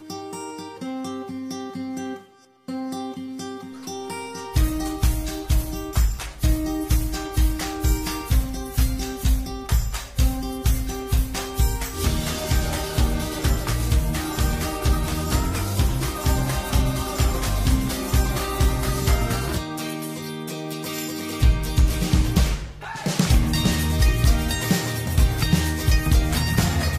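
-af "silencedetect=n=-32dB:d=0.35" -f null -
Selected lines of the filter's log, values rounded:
silence_start: 2.18
silence_end: 2.68 | silence_duration: 0.51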